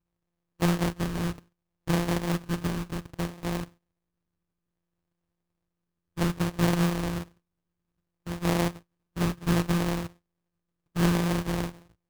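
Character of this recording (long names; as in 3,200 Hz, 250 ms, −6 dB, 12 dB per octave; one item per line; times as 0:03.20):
a buzz of ramps at a fixed pitch in blocks of 256 samples
phaser sweep stages 12, 0.62 Hz, lowest notch 640–1,700 Hz
aliases and images of a low sample rate 1,400 Hz, jitter 20%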